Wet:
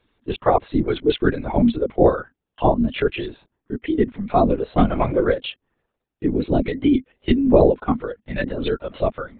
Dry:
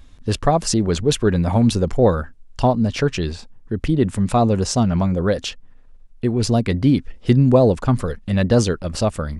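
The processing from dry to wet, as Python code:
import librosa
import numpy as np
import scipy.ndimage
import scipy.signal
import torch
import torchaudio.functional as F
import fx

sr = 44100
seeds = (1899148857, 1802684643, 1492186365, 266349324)

y = fx.leveller(x, sr, passes=2, at=(4.78, 5.24))
y = fx.noise_reduce_blind(y, sr, reduce_db=8)
y = fx.over_compress(y, sr, threshold_db=-21.0, ratio=-1.0, at=(8.43, 8.98))
y = scipy.signal.sosfilt(scipy.signal.ellip(4, 1.0, 40, 220.0, 'highpass', fs=sr, output='sos'), y)
y = fx.lpc_vocoder(y, sr, seeds[0], excitation='whisper', order=16)
y = y * 10.0 ** (1.0 / 20.0)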